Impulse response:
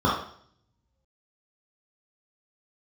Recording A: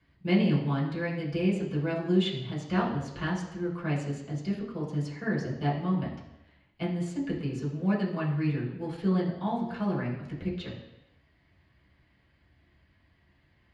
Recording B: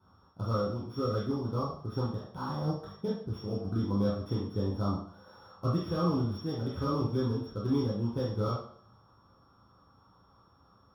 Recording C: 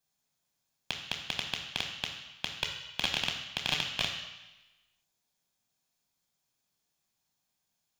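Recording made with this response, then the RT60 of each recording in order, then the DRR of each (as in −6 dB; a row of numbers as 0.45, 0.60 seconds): B; 0.85, 0.60, 1.1 seconds; −6.5, −7.5, 2.5 decibels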